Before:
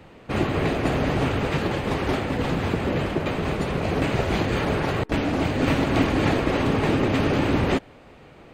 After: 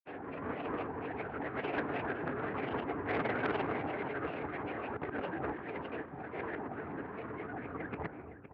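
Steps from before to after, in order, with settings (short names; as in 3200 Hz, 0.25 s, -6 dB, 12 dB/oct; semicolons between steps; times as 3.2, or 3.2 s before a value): tape stop at the end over 1.28 s; bell 1500 Hz +13 dB 0.37 oct; negative-ratio compressor -28 dBFS, ratio -0.5; grains 0.1 s, grains 20/s, spray 0.1 s, pitch spread up and down by 12 st; speaker cabinet 100–2400 Hz, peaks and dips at 190 Hz -4 dB, 290 Hz +7 dB, 430 Hz +8 dB, 720 Hz +6 dB, 1600 Hz +5 dB; echo 0.513 s -15 dB; core saturation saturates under 1200 Hz; gain -8 dB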